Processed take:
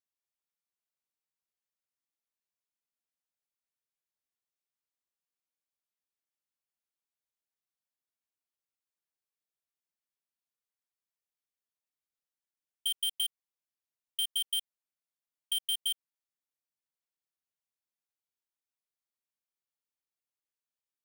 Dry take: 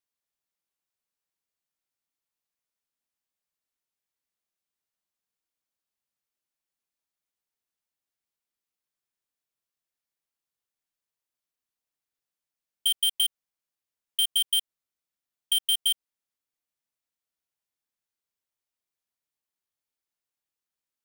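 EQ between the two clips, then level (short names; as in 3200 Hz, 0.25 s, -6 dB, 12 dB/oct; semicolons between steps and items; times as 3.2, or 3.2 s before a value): low shelf 160 Hz -4.5 dB; -7.5 dB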